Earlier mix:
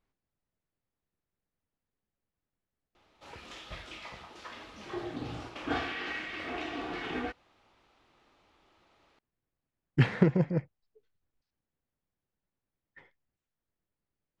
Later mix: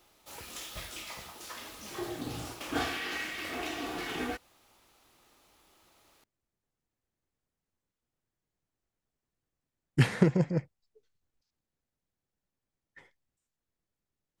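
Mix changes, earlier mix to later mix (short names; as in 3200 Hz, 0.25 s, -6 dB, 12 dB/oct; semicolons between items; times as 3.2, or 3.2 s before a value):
background: entry -2.95 s; master: remove LPF 3300 Hz 12 dB/oct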